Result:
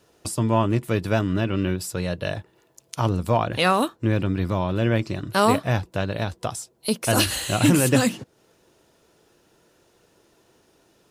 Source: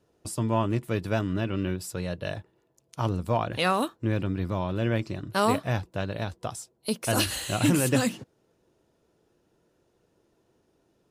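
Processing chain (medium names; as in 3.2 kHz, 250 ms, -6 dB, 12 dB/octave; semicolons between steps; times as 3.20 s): tape noise reduction on one side only encoder only; trim +5 dB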